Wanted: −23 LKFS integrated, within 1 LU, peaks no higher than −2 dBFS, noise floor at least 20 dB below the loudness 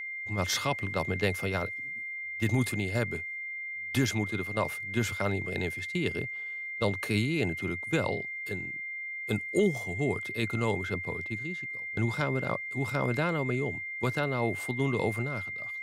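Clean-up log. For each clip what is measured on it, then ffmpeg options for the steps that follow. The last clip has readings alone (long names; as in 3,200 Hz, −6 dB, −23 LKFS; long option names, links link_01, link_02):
interfering tone 2,100 Hz; level of the tone −35 dBFS; integrated loudness −31.0 LKFS; sample peak −15.5 dBFS; target loudness −23.0 LKFS
→ -af "bandreject=frequency=2100:width=30"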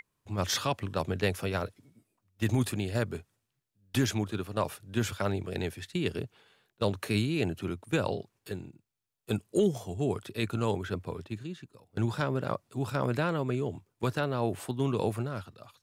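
interfering tone none found; integrated loudness −32.0 LKFS; sample peak −16.0 dBFS; target loudness −23.0 LKFS
→ -af "volume=9dB"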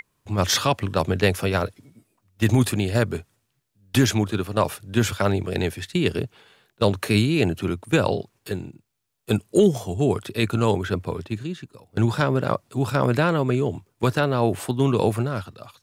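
integrated loudness −23.0 LKFS; sample peak −7.0 dBFS; background noise floor −73 dBFS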